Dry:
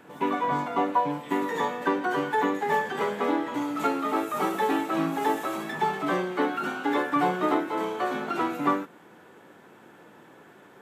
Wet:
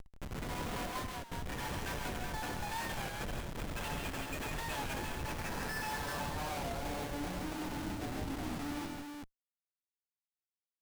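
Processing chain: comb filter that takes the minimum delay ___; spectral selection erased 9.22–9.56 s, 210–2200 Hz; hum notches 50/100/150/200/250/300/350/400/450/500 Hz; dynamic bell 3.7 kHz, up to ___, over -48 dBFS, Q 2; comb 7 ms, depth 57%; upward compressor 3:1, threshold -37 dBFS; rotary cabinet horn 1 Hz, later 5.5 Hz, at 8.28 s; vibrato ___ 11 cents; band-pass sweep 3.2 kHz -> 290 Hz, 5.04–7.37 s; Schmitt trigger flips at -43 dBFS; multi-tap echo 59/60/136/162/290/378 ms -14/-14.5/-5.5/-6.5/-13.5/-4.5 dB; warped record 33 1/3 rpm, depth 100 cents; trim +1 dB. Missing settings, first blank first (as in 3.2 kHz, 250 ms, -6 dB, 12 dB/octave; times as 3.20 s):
1.2 ms, -3 dB, 5.4 Hz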